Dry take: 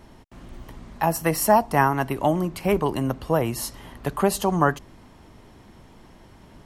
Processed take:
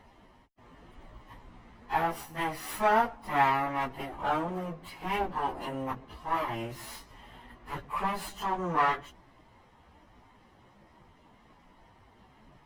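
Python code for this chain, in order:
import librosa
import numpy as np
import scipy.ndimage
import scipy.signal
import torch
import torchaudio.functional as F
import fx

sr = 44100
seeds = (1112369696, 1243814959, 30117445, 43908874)

y = fx.lower_of_two(x, sr, delay_ms=1.0)
y = fx.bass_treble(y, sr, bass_db=-7, treble_db=-11)
y = fx.stretch_vocoder_free(y, sr, factor=1.9)
y = y * librosa.db_to_amplitude(-2.0)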